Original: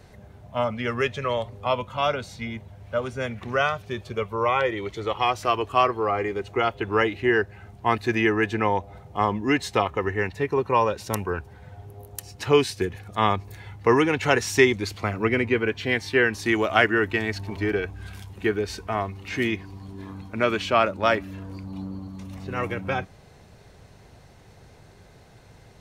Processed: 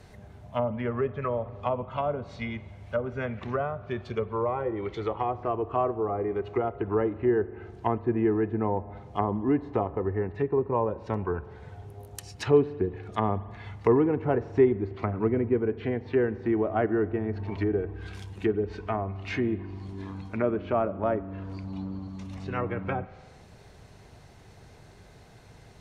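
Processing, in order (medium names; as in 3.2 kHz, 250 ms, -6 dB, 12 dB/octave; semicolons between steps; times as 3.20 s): band-stop 530 Hz, Q 17; low-pass that closes with the level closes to 650 Hz, closed at -22 dBFS; spring tank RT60 1.7 s, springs 41 ms, chirp 35 ms, DRR 16.5 dB; trim -1 dB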